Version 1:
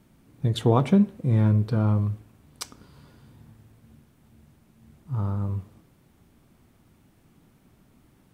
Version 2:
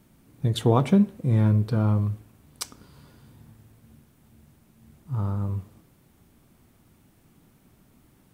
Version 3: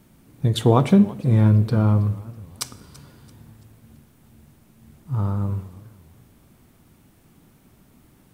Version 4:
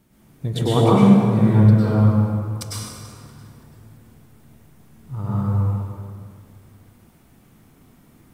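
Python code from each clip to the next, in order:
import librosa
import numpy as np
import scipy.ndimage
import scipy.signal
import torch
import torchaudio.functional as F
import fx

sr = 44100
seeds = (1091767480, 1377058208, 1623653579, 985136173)

y1 = fx.high_shelf(x, sr, hz=7800.0, db=6.5)
y2 = fx.rev_schroeder(y1, sr, rt60_s=0.87, comb_ms=38, drr_db=19.0)
y2 = fx.echo_warbled(y2, sr, ms=329, feedback_pct=37, rate_hz=2.8, cents=203, wet_db=-20)
y2 = y2 * librosa.db_to_amplitude(4.0)
y3 = fx.rev_plate(y2, sr, seeds[0], rt60_s=2.0, hf_ratio=0.6, predelay_ms=90, drr_db=-8.0)
y3 = y3 * librosa.db_to_amplitude(-6.0)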